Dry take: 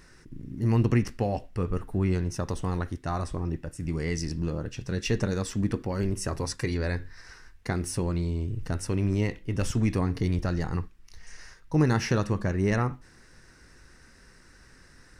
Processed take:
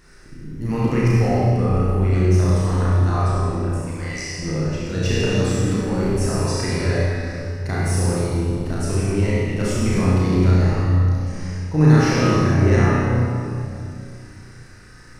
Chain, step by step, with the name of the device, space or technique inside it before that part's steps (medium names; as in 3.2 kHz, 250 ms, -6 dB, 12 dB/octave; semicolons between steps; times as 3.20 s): 3.75–4.39 s: steep high-pass 530 Hz 72 dB/octave; tunnel (flutter echo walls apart 5.6 m, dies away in 0.54 s; reverberation RT60 2.6 s, pre-delay 27 ms, DRR -5.5 dB)